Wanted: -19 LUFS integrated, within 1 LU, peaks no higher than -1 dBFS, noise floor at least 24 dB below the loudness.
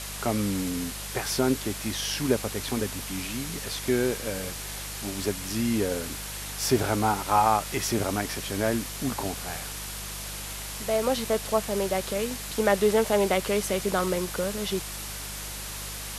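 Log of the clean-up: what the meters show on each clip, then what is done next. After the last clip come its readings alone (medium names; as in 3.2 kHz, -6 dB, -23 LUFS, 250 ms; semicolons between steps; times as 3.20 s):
hum 50 Hz; highest harmonic 200 Hz; hum level -39 dBFS; noise floor -37 dBFS; noise floor target -52 dBFS; loudness -28.0 LUFS; peak level -8.5 dBFS; loudness target -19.0 LUFS
-> de-hum 50 Hz, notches 4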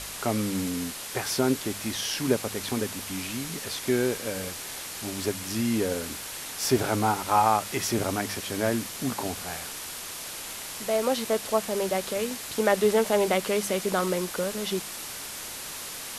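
hum not found; noise floor -38 dBFS; noise floor target -52 dBFS
-> noise print and reduce 14 dB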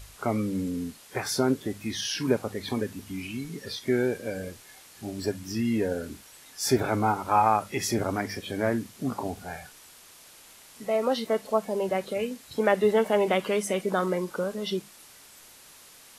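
noise floor -52 dBFS; loudness -28.0 LUFS; peak level -9.0 dBFS; loudness target -19.0 LUFS
-> trim +9 dB; peak limiter -1 dBFS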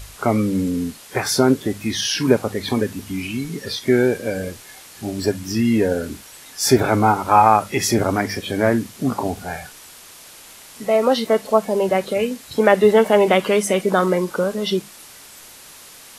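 loudness -19.0 LUFS; peak level -1.0 dBFS; noise floor -43 dBFS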